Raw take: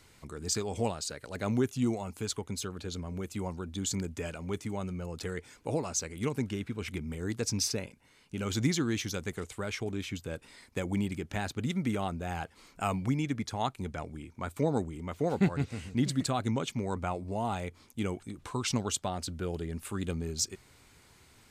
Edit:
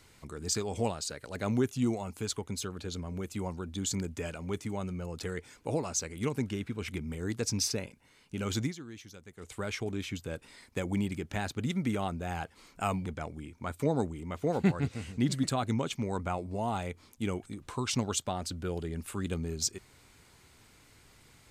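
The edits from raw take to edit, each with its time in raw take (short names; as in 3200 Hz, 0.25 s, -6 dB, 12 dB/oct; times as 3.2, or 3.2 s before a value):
8.57–9.54 dip -15 dB, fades 0.17 s
13.06–13.83 cut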